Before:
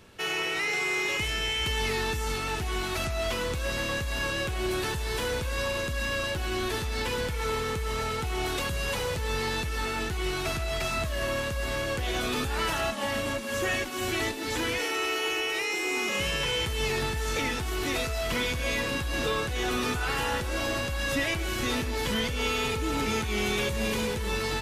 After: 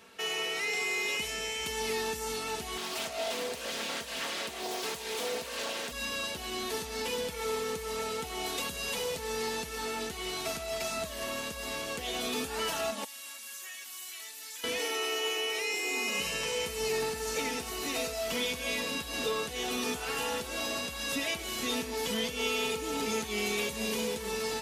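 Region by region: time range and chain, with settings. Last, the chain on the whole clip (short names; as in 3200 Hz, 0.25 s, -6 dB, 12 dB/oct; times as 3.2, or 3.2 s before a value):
2.77–5.92 HPF 200 Hz 6 dB/oct + Doppler distortion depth 0.69 ms
13.04–14.64 pre-emphasis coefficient 0.97 + compressor 4:1, threshold -41 dBFS
15.95–18.14 notch 3400 Hz + echo 93 ms -10 dB
whole clip: HPF 460 Hz 6 dB/oct; dynamic EQ 1500 Hz, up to -8 dB, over -45 dBFS, Q 0.73; comb 4.4 ms, depth 52%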